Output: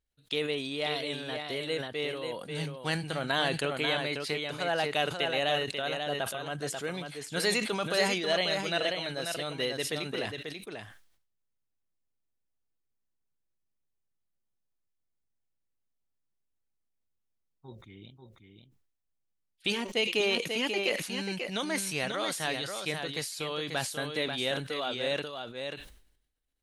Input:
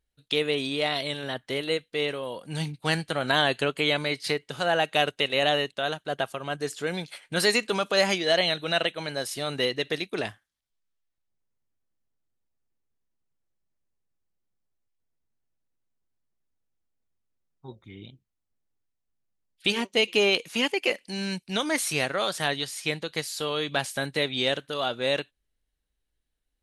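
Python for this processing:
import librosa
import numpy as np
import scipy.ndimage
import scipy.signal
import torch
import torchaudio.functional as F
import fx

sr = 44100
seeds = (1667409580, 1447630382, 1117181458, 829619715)

y = x + 10.0 ** (-6.0 / 20.0) * np.pad(x, (int(539 * sr / 1000.0), 0))[:len(x)]
y = fx.sustainer(y, sr, db_per_s=75.0)
y = F.gain(torch.from_numpy(y), -6.0).numpy()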